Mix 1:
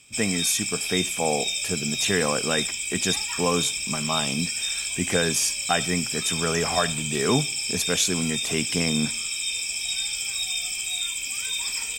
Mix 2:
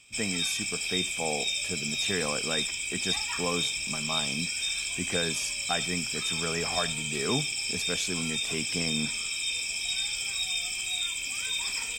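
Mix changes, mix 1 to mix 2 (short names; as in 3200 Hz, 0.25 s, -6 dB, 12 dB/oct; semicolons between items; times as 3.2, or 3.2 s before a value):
speech -7.5 dB; master: add high shelf 6900 Hz -9 dB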